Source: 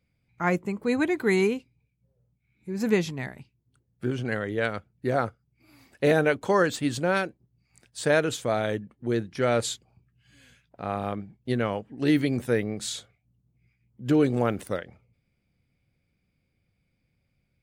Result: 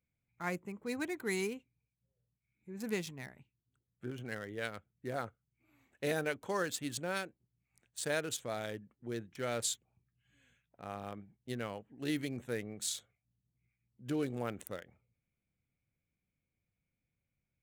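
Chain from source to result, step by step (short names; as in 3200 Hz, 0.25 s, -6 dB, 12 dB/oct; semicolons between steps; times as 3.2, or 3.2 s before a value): Wiener smoothing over 9 samples; pre-emphasis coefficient 0.8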